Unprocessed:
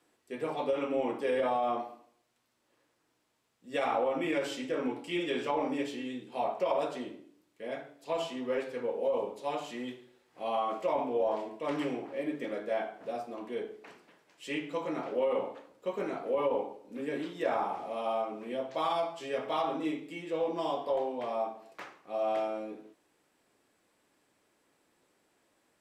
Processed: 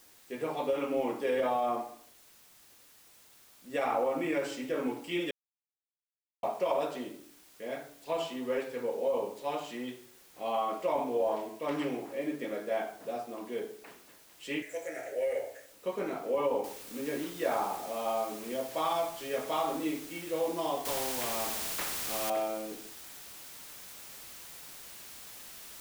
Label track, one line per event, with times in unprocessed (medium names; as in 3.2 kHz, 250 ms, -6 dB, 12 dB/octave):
1.660000	4.660000	peaking EQ 3.4 kHz -6 dB 0.56 oct
5.310000	6.430000	mute
14.620000	15.730000	FFT filter 110 Hz 0 dB, 180 Hz -25 dB, 300 Hz -13 dB, 640 Hz +2 dB, 1.1 kHz -26 dB, 1.7 kHz +10 dB, 4.3 kHz -18 dB, 6.4 kHz +15 dB
16.640000	16.640000	noise floor step -59 dB -48 dB
20.850000	22.300000	spectrum-flattening compressor 2:1